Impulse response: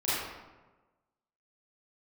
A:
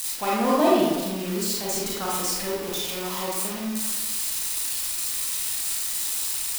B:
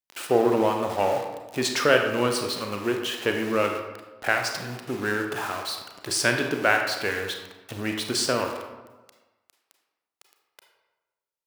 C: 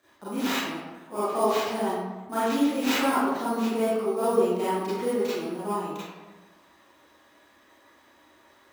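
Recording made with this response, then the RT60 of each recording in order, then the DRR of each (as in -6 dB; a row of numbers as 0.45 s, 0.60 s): C; 1.2 s, 1.2 s, 1.2 s; -6.5 dB, 3.0 dB, -12.5 dB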